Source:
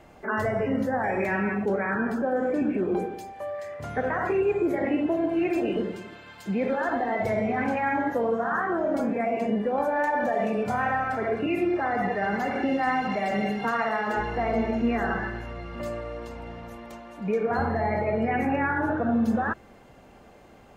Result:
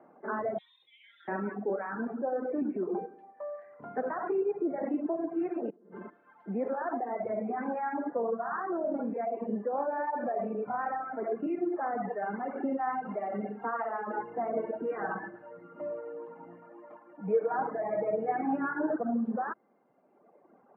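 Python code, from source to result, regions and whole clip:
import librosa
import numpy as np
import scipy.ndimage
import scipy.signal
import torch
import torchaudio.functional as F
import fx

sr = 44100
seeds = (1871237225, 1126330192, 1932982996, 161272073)

y = fx.chain(x, sr, fx.freq_invert(carrier_hz=3900),
    fx.peak_eq(hz=1400.0, db=-14.0, octaves=0.97), at=(0.58, 1.28))
y = fx.chain(y, sr, fx.high_shelf(hz=3700.0, db=-9.5),
    fx.over_compress(threshold_db=-39.0, ratio=-1.0), at=(5.7, 6.1))
y = fx.chain(y, sr, fx.comb(ms=6.4, depth=0.79),
    fx.echo_single(ms=107, db=-10.5), at=(14.56, 18.96))
y = scipy.signal.sosfilt(scipy.signal.butter(4, 1400.0, 'lowpass', fs=sr, output='sos'), y)
y = fx.dereverb_blind(y, sr, rt60_s=1.6)
y = scipy.signal.sosfilt(scipy.signal.butter(4, 200.0, 'highpass', fs=sr, output='sos'), y)
y = y * 10.0 ** (-4.0 / 20.0)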